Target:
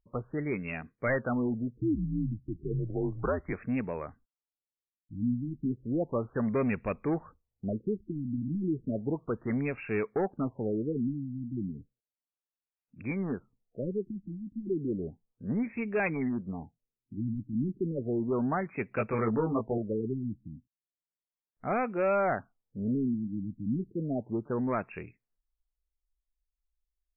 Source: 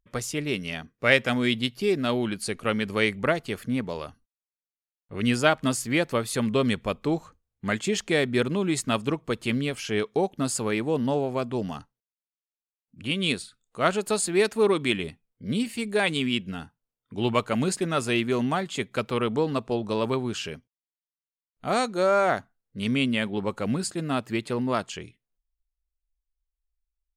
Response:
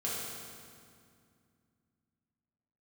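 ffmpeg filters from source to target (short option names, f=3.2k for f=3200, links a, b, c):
-filter_complex "[0:a]asettb=1/sr,asplit=3[a][b][c];[a]atrim=end=1.774[d];[b]atrim=start=1.77:end=3.53,asetpts=PTS-STARTPTS,afade=t=in:d=0.004:c=qsin,afade=t=out:st=1.756:d=0.004:c=qsin,afreqshift=-81[e];[c]atrim=start=3.526[f];[d][e]acrossfade=d=0.004:c1=hsin:c2=qsin[g];[g][f]acrossfade=d=0.004:c1=qsin:c2=hsin,asoftclip=type=tanh:threshold=-20dB,asettb=1/sr,asplit=3[h][i][j];[h]atrim=end=18.954[k];[i]atrim=start=18.95:end=19.78,asetpts=PTS-STARTPTS,afade=t=in:d=0.004:c=qsin,afade=t=out:st=0.826:d=0.004:c=qsin,asplit=2[l][m];[m]adelay=18,volume=-3dB[n];[l][n]amix=inputs=2:normalize=0,atrim=end_sample=36603[o];[j]atrim=start=19.776[p];[k][o]acrossfade=d=0.004:c1=hsin:c2=qsin[q];[q][p]acrossfade=d=0.004:c1=qsin:c2=hsin,afftfilt=real='re*lt(b*sr/1024,310*pow(2800/310,0.5+0.5*sin(2*PI*0.33*pts/sr)))':imag='im*lt(b*sr/1024,310*pow(2800/310,0.5+0.5*sin(2*PI*0.33*pts/sr)))':win_size=1024:overlap=0.75,volume=-2dB"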